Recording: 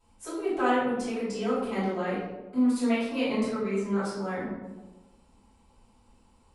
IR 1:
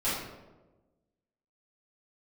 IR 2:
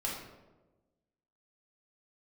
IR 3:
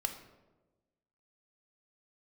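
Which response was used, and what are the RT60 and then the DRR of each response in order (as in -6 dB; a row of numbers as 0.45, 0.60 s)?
1; 1.2, 1.2, 1.2 s; -12.5, -4.5, 5.5 dB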